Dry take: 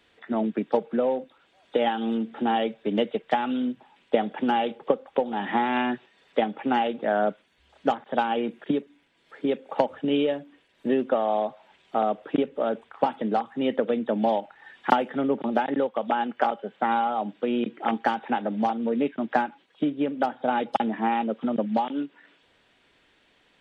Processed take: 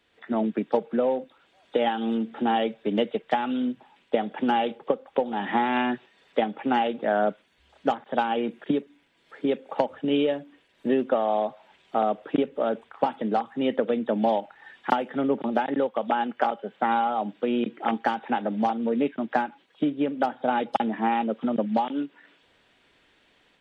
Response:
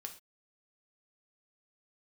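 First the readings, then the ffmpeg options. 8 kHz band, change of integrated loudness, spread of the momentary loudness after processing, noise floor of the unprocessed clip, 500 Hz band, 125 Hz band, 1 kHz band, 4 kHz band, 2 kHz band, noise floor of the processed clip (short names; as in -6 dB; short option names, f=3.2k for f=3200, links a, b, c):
n/a, 0.0 dB, 5 LU, -64 dBFS, 0.0 dB, 0.0 dB, 0.0 dB, 0.0 dB, 0.0 dB, -64 dBFS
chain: -af "dynaudnorm=f=110:g=3:m=6dB,volume=-5.5dB"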